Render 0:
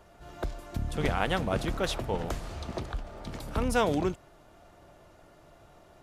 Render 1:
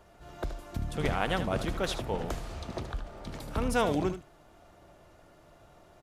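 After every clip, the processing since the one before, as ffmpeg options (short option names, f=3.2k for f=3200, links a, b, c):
-af "aecho=1:1:76:0.282,volume=-1.5dB"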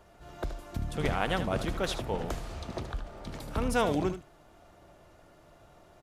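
-af anull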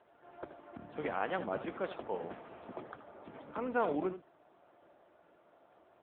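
-filter_complex "[0:a]acrossover=split=220 2500:gain=0.112 1 0.2[a][b][c];[a][b][c]amix=inputs=3:normalize=0,volume=-3dB" -ar 8000 -c:a libopencore_amrnb -b:a 6700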